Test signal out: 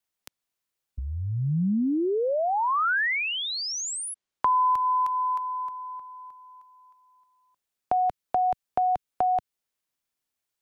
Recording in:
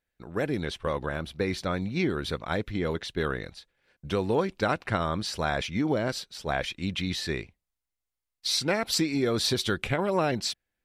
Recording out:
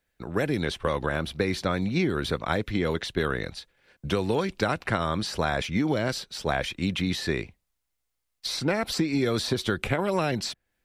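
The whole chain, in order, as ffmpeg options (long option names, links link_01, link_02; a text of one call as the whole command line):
ffmpeg -i in.wav -filter_complex "[0:a]acrossover=split=150|1800|7900[link_01][link_02][link_03][link_04];[link_01]acompressor=threshold=-41dB:ratio=4[link_05];[link_02]acompressor=threshold=-31dB:ratio=4[link_06];[link_03]acompressor=threshold=-41dB:ratio=4[link_07];[link_04]acompressor=threshold=-54dB:ratio=4[link_08];[link_05][link_06][link_07][link_08]amix=inputs=4:normalize=0,volume=7dB" out.wav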